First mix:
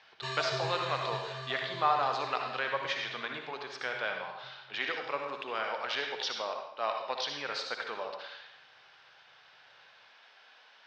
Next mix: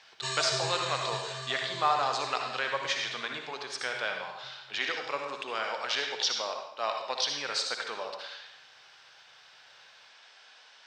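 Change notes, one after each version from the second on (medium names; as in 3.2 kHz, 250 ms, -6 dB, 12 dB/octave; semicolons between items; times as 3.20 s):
master: remove distance through air 190 m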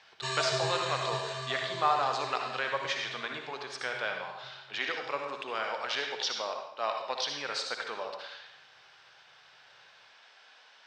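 background: send +11.0 dB; master: add treble shelf 4.6 kHz -8.5 dB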